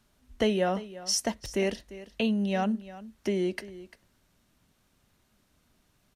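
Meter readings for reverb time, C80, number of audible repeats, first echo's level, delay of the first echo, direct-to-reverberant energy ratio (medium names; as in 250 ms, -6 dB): no reverb, no reverb, 1, -16.5 dB, 347 ms, no reverb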